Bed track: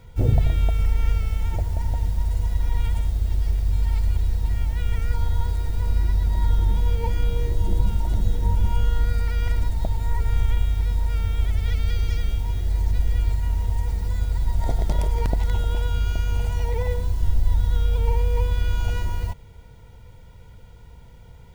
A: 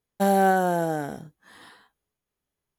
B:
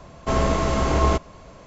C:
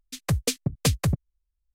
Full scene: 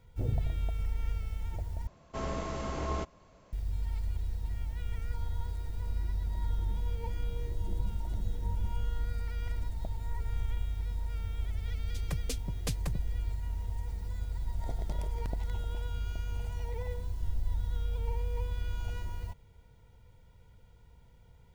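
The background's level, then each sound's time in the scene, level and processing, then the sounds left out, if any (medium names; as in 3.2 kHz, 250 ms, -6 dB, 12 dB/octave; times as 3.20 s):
bed track -12.5 dB
1.87 s: replace with B -14.5 dB
11.82 s: add C -13 dB
not used: A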